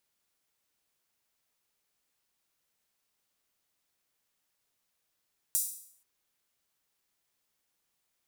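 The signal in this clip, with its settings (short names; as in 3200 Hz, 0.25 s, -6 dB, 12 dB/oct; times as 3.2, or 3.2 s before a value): open hi-hat length 0.48 s, high-pass 8100 Hz, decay 0.61 s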